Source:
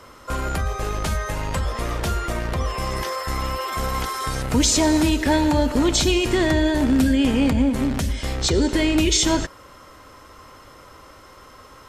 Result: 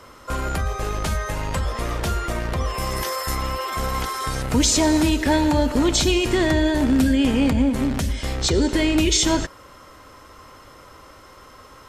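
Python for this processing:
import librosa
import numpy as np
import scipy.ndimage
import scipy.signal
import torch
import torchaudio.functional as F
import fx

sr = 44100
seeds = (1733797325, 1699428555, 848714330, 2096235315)

y = fx.high_shelf(x, sr, hz=fx.line((2.73, 12000.0), (3.34, 6500.0)), db=12.0, at=(2.73, 3.34), fade=0.02)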